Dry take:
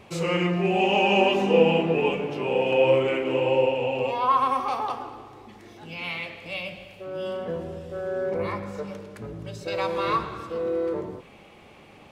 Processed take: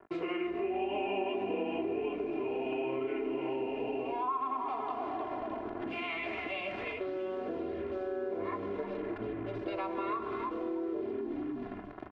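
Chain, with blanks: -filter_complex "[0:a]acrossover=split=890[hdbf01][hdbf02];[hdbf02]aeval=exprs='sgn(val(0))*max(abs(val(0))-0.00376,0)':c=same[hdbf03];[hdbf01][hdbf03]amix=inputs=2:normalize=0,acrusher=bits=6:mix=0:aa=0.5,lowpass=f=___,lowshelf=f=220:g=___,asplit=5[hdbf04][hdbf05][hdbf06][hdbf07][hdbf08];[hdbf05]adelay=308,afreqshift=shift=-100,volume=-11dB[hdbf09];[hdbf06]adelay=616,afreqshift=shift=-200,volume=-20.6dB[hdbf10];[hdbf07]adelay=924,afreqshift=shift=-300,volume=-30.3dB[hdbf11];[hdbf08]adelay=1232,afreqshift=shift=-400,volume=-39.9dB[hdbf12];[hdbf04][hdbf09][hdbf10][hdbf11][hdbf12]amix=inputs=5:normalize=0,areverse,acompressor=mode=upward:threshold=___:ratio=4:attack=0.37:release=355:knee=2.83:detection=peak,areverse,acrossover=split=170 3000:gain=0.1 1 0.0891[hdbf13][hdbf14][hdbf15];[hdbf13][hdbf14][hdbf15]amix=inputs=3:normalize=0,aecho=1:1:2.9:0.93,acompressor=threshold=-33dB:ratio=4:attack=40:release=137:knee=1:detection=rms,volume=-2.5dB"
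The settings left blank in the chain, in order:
4.2k, 9, -22dB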